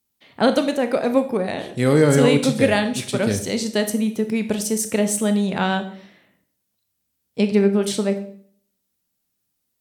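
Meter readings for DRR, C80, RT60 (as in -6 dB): 8.0 dB, 15.5 dB, 0.55 s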